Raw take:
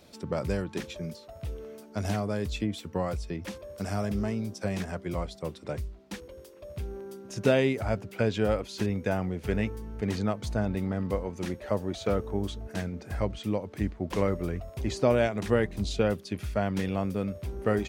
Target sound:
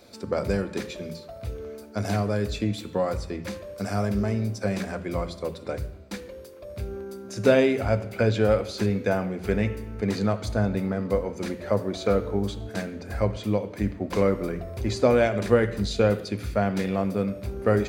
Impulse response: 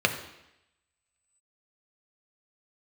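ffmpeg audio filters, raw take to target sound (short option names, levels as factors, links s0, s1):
-filter_complex "[0:a]asplit=2[s0][s1];[1:a]atrim=start_sample=2205,highshelf=f=6000:g=10[s2];[s1][s2]afir=irnorm=-1:irlink=0,volume=0.2[s3];[s0][s3]amix=inputs=2:normalize=0"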